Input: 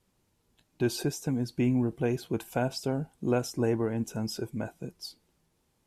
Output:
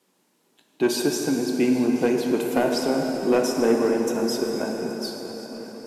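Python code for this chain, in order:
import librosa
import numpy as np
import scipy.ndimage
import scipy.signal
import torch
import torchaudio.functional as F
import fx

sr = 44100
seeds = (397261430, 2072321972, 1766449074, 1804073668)

p1 = scipy.signal.sosfilt(scipy.signal.butter(4, 210.0, 'highpass', fs=sr, output='sos'), x)
p2 = np.clip(p1, -10.0 ** (-21.0 / 20.0), 10.0 ** (-21.0 / 20.0))
p3 = p2 + fx.echo_swing(p2, sr, ms=1103, ratio=3, feedback_pct=57, wet_db=-19.0, dry=0)
p4 = fx.rev_plate(p3, sr, seeds[0], rt60_s=4.7, hf_ratio=0.65, predelay_ms=0, drr_db=1.0)
y = p4 * librosa.db_to_amplitude(7.0)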